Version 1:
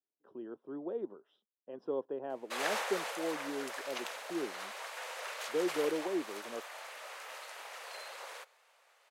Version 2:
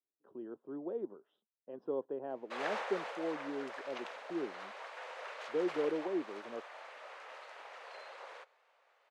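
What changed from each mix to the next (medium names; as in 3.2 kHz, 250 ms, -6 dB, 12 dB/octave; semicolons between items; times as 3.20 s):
master: add tape spacing loss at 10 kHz 23 dB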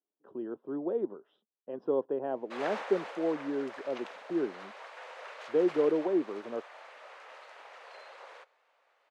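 speech +7.5 dB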